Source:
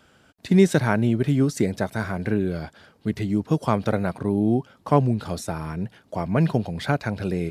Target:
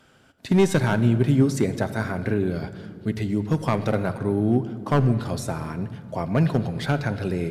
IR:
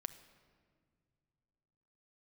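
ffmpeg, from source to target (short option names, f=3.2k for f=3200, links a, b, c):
-filter_complex "[0:a]asoftclip=type=hard:threshold=-11.5dB[a];[1:a]atrim=start_sample=2205,asetrate=36162,aresample=44100[b];[a][b]afir=irnorm=-1:irlink=0,volume=2dB"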